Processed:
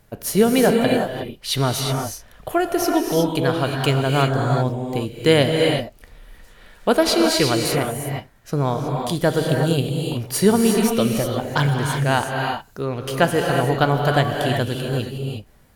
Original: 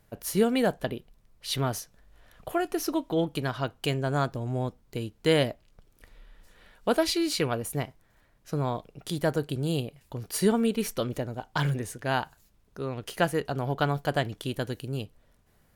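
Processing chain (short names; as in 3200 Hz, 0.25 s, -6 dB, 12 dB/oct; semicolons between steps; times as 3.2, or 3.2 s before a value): non-linear reverb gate 0.39 s rising, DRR 1.5 dB; gain +7.5 dB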